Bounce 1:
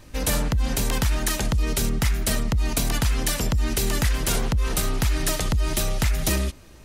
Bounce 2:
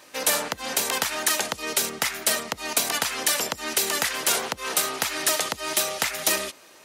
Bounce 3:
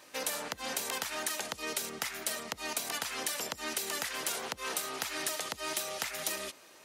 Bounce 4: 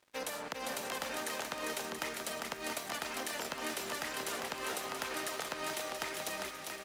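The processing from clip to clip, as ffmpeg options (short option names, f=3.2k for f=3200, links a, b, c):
-af "highpass=530,volume=4dB"
-af "acompressor=threshold=-26dB:ratio=6,volume=-5.5dB"
-filter_complex "[0:a]highshelf=f=3.1k:g=-8.5,aeval=exprs='sgn(val(0))*max(abs(val(0))-0.00178,0)':c=same,asplit=2[a][b];[b]aecho=0:1:400|680|876|1013|1109:0.631|0.398|0.251|0.158|0.1[c];[a][c]amix=inputs=2:normalize=0"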